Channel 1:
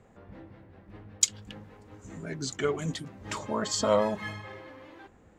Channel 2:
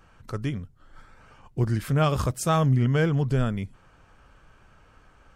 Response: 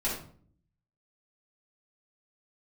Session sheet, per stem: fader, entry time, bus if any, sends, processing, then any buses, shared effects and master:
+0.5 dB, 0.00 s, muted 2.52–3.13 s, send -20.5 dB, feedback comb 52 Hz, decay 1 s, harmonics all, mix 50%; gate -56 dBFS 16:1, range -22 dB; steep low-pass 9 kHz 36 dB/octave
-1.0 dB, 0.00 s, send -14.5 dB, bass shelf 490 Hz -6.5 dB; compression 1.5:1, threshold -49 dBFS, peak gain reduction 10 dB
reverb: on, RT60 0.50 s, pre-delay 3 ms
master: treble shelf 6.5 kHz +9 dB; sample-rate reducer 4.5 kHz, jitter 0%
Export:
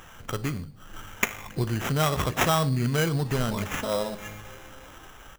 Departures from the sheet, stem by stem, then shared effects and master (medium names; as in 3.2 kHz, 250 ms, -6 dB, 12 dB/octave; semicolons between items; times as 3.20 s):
stem 2 -1.0 dB -> +10.5 dB; reverb return -7.0 dB